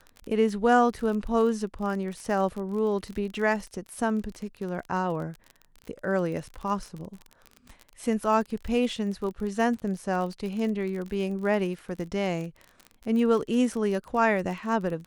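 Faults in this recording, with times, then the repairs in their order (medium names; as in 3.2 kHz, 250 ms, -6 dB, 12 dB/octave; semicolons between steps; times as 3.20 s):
crackle 34 per s -33 dBFS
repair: de-click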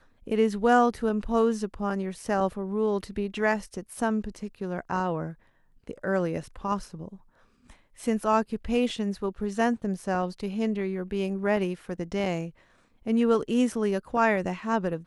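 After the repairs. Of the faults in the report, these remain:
nothing left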